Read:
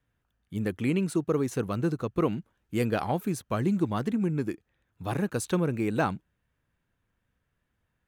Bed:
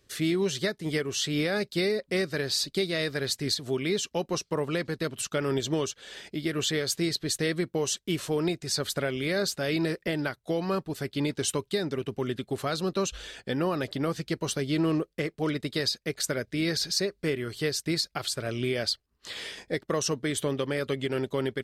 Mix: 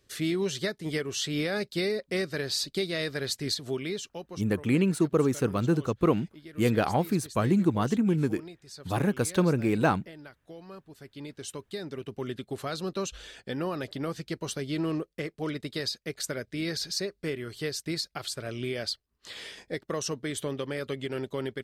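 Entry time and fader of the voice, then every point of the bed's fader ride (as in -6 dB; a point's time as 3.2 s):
3.85 s, +2.5 dB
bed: 3.7 s -2 dB
4.58 s -17 dB
10.78 s -17 dB
12.24 s -4 dB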